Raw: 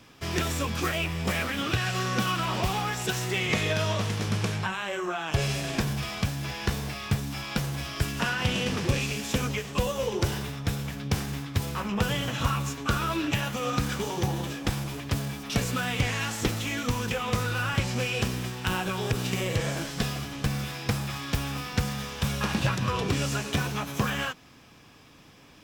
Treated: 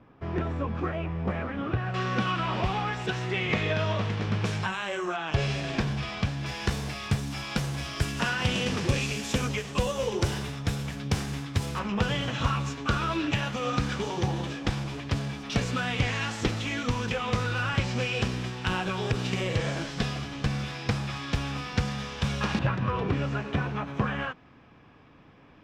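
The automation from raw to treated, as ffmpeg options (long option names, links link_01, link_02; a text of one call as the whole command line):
ffmpeg -i in.wav -af "asetnsamples=nb_out_samples=441:pad=0,asendcmd='1.94 lowpass f 3100;4.45 lowpass f 8100;5.16 lowpass f 4300;6.46 lowpass f 9600;11.79 lowpass f 5300;22.59 lowpass f 2000',lowpass=1200" out.wav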